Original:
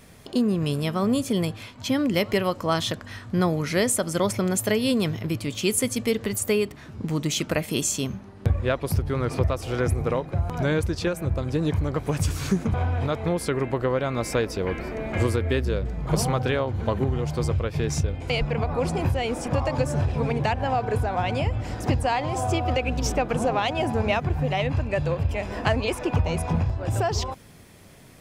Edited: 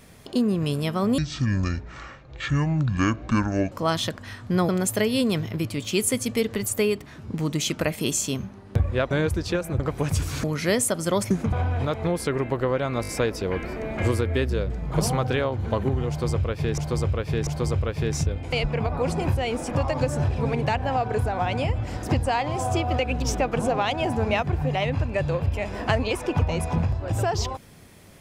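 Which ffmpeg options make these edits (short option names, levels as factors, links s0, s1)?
-filter_complex "[0:a]asplit=13[s0][s1][s2][s3][s4][s5][s6][s7][s8][s9][s10][s11][s12];[s0]atrim=end=1.184[s13];[s1]atrim=start=1.18:end=2.55,asetpts=PTS-STARTPTS,asetrate=23814,aresample=44100,atrim=end_sample=111883,asetpts=PTS-STARTPTS[s14];[s2]atrim=start=2.546:end=3.522[s15];[s3]atrim=start=4.388:end=8.812[s16];[s4]atrim=start=10.628:end=11.322[s17];[s5]atrim=start=11.878:end=12.522[s18];[s6]atrim=start=3.518:end=4.392[s19];[s7]atrim=start=12.518:end=14.252[s20];[s8]atrim=start=14.228:end=14.252[s21];[s9]atrim=start=14.228:end=14.252[s22];[s10]atrim=start=14.228:end=17.932[s23];[s11]atrim=start=17.238:end=17.932[s24];[s12]atrim=start=17.238[s25];[s13][s14]acrossfade=d=0.004:c1=hsin:c2=hsin[s26];[s26][s15]acrossfade=d=0.004:c1=hsin:c2=hsin[s27];[s27][s16]acrossfade=d=0.004:c1=hsin:c2=hsin[s28];[s28][s17]acrossfade=d=0.004:c1=hsin:c2=hsin[s29];[s29][s18]acrossfade=d=0.004:c1=hsin:c2=hsin[s30];[s30][s19]acrossfade=d=0.004:c1=hsin:c2=hsin[s31];[s31][s20]acrossfade=d=0.004:c1=hsin:c2=hsin[s32];[s32][s21]acrossfade=d=0.004:c1=hsin:c2=hsin[s33];[s33][s22]acrossfade=d=0.004:c1=hsin:c2=hsin[s34];[s34][s23]acrossfade=d=0.004:c1=hsin:c2=hsin[s35];[s35][s24]acrossfade=d=0.004:c1=hsin:c2=hsin[s36];[s36][s25]acrossfade=d=0.004:c1=hsin:c2=hsin"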